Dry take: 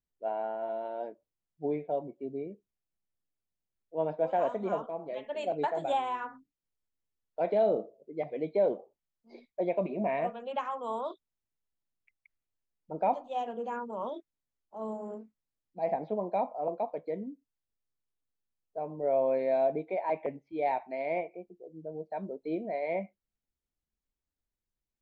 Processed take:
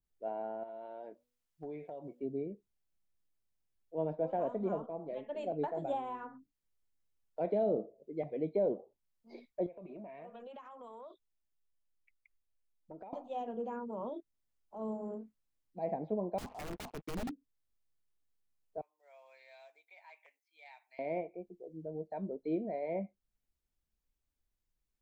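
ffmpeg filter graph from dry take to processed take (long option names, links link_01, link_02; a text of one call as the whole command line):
ffmpeg -i in.wav -filter_complex "[0:a]asettb=1/sr,asplit=3[link_01][link_02][link_03];[link_01]atrim=end=0.634[link_04];[link_02]atrim=start=0.63:end=2.2,asetpts=PTS-STARTPTS,afade=type=in:duration=0.004:curve=qsin,afade=type=out:start_time=1.566:duration=0.004:curve=qsin,tiltshelf=frequency=700:gain=-4.5,acompressor=threshold=-40dB:ratio=4:attack=3.2:release=140:knee=1:detection=peak,bandreject=frequency=244.3:width_type=h:width=4,bandreject=frequency=488.6:width_type=h:width=4[link_05];[link_03]atrim=start=2.196[link_06];[link_04][link_05]acrossfade=duration=0.004:curve1=hsin:curve2=qsin[link_07];[link_07][link_06]acrossfade=duration=0.004:curve1=qsin:curve2=hsin,asettb=1/sr,asplit=3[link_08][link_09][link_10];[link_08]atrim=end=9.664[link_11];[link_09]atrim=start=9.66:end=13.13,asetpts=PTS-STARTPTS,afade=type=in:duration=0.004:curve=qsin,afade=type=out:start_time=3.466:duration=0.004:curve=qsin,flanger=delay=1.5:depth=2:regen=61:speed=1.4:shape=triangular,acompressor=threshold=-44dB:ratio=8:attack=3.2:release=140:knee=1:detection=peak[link_12];[link_10]atrim=start=13.126[link_13];[link_11][link_12]acrossfade=duration=0.004:curve1=hsin:curve2=qsin[link_14];[link_14][link_13]acrossfade=duration=0.004:curve1=qsin:curve2=hsin,asettb=1/sr,asplit=3[link_15][link_16][link_17];[link_15]atrim=end=16.384[link_18];[link_16]atrim=start=16.38:end=17.31,asetpts=PTS-STARTPTS,afade=type=in:duration=0.004:curve=qsin,afade=type=out:start_time=0.926:duration=0.004:curve=qsin,aecho=1:1:0.9:0.91,atrim=end_sample=41013,acrusher=bits=7:mix=0:aa=0.5,aeval=exprs='(mod(42.2*val(0)+1,2)-1)/42.2':channel_layout=same[link_19];[link_17]atrim=start=17.306[link_20];[link_18][link_19]acrossfade=duration=0.004:curve1=hsin:curve2=qsin[link_21];[link_21][link_20]acrossfade=duration=0.004:curve1=qsin:curve2=hsin,asettb=1/sr,asplit=3[link_22][link_23][link_24];[link_22]atrim=end=18.814[link_25];[link_23]atrim=start=18.81:end=20.99,asetpts=PTS-STARTPTS,afade=type=in:duration=0.004:curve=qsin,afade=type=out:start_time=2.176:duration=0.004:curve=qsin,highpass=1200,aderivative[link_26];[link_24]atrim=start=20.986[link_27];[link_25][link_26]acrossfade=duration=0.004:curve1=hsin:curve2=qsin[link_28];[link_28][link_27]acrossfade=duration=0.004:curve1=qsin:curve2=hsin,lowshelf=frequency=70:gain=8,acrossover=split=480[link_29][link_30];[link_30]acompressor=threshold=-55dB:ratio=1.5[link_31];[link_29][link_31]amix=inputs=2:normalize=0,adynamicequalizer=threshold=0.00251:dfrequency=1600:dqfactor=0.7:tfrequency=1600:tqfactor=0.7:attack=5:release=100:ratio=0.375:range=3.5:mode=cutabove:tftype=highshelf" out.wav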